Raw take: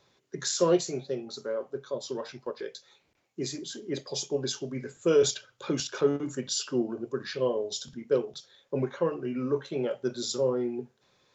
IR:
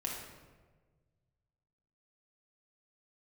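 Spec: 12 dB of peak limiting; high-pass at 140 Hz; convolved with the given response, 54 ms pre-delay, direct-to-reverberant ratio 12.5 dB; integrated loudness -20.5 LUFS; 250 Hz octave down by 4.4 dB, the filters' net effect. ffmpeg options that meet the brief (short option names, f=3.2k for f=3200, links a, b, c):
-filter_complex "[0:a]highpass=140,equalizer=f=250:t=o:g=-6,alimiter=level_in=2.5dB:limit=-24dB:level=0:latency=1,volume=-2.5dB,asplit=2[a][b];[1:a]atrim=start_sample=2205,adelay=54[c];[b][c]afir=irnorm=-1:irlink=0,volume=-14.5dB[d];[a][d]amix=inputs=2:normalize=0,volume=16.5dB"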